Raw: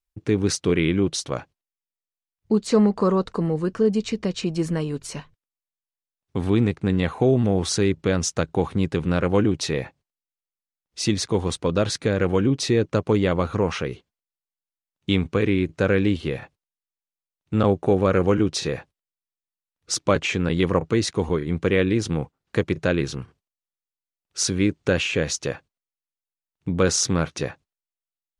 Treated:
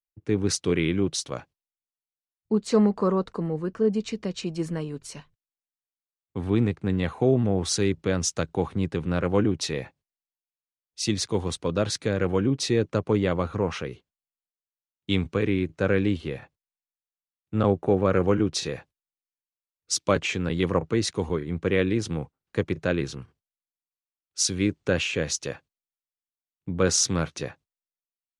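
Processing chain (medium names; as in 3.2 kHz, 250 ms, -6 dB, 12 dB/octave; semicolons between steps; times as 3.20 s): three bands expanded up and down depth 40%; trim -3.5 dB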